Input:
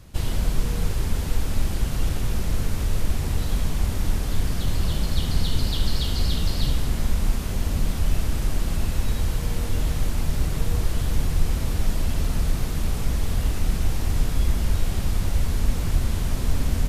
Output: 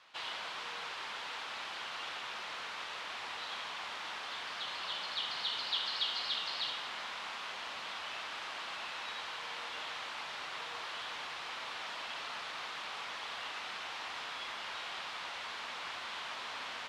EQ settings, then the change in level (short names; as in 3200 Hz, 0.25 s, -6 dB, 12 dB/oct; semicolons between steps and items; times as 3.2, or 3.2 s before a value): Chebyshev band-pass 980–3600 Hz, order 2; 0.0 dB